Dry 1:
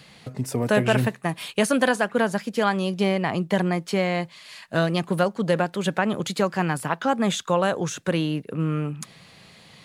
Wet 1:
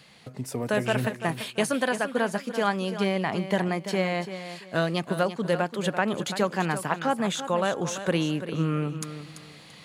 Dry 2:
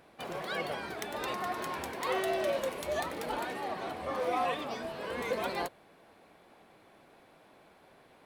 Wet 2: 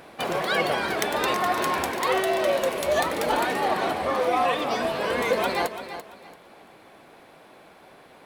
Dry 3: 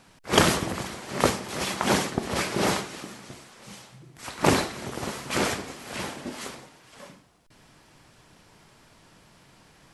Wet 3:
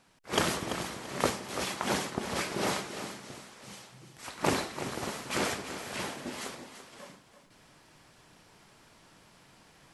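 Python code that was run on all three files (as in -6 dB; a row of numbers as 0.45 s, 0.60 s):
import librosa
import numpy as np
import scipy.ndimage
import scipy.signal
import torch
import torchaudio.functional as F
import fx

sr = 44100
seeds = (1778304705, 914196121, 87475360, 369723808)

y = fx.low_shelf(x, sr, hz=180.0, db=-4.5)
y = fx.rider(y, sr, range_db=3, speed_s=0.5)
y = fx.echo_feedback(y, sr, ms=338, feedback_pct=26, wet_db=-11)
y = librosa.util.normalize(y) * 10.0 ** (-9 / 20.0)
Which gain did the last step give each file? -2.5 dB, +10.5 dB, -5.5 dB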